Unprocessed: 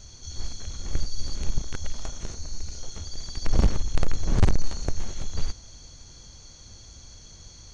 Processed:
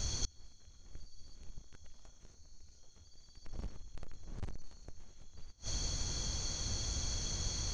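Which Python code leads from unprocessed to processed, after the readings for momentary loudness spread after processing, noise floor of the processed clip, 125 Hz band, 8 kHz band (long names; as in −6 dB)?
21 LU, −61 dBFS, −14.0 dB, can't be measured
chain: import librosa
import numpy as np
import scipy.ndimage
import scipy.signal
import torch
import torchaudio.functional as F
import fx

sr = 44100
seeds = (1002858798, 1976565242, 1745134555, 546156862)

y = fx.gate_flip(x, sr, shuts_db=-30.0, range_db=-32)
y = y * librosa.db_to_amplitude(8.5)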